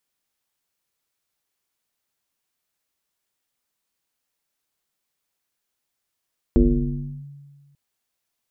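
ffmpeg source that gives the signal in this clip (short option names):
-f lavfi -i "aevalsrc='0.316*pow(10,-3*t/1.6)*sin(2*PI*142*t+2.4*clip(1-t/0.7,0,1)*sin(2*PI*0.71*142*t))':d=1.19:s=44100"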